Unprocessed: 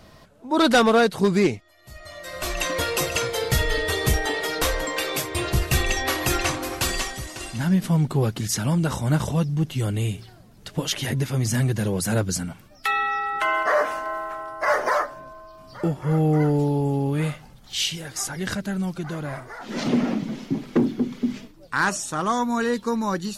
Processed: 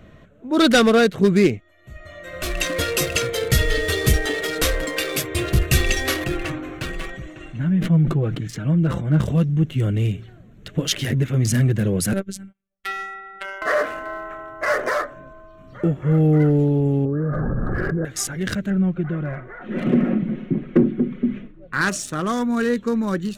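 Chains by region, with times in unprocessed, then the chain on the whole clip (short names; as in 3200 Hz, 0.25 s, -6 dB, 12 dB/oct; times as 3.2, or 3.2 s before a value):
6.24–9.21 LPF 2900 Hz 6 dB/oct + flange 1.1 Hz, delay 5.8 ms, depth 1 ms, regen +30% + sustainer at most 58 dB/s
12.13–13.62 robotiser 194 Hz + upward expander 2.5:1, over -46 dBFS
17.05–18.05 rippled Chebyshev low-pass 1700 Hz, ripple 6 dB + fast leveller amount 100%
18.7–21.81 LPF 2400 Hz + comb 5.5 ms, depth 42%
whole clip: Wiener smoothing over 9 samples; bell 890 Hz -13 dB 0.69 oct; gain +4.5 dB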